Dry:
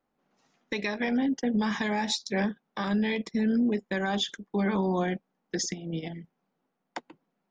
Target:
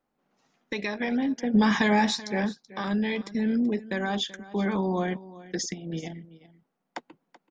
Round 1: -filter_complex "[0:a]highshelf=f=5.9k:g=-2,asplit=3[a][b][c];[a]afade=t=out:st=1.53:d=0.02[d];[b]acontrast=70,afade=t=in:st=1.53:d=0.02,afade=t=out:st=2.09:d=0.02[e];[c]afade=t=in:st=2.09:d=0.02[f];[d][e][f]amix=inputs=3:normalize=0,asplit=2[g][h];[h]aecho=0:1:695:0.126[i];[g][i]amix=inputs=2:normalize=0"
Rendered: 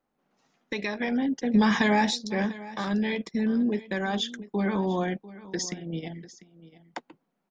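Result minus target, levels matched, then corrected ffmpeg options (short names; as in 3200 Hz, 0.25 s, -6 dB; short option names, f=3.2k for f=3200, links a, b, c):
echo 0.314 s late
-filter_complex "[0:a]highshelf=f=5.9k:g=-2,asplit=3[a][b][c];[a]afade=t=out:st=1.53:d=0.02[d];[b]acontrast=70,afade=t=in:st=1.53:d=0.02,afade=t=out:st=2.09:d=0.02[e];[c]afade=t=in:st=2.09:d=0.02[f];[d][e][f]amix=inputs=3:normalize=0,asplit=2[g][h];[h]aecho=0:1:381:0.126[i];[g][i]amix=inputs=2:normalize=0"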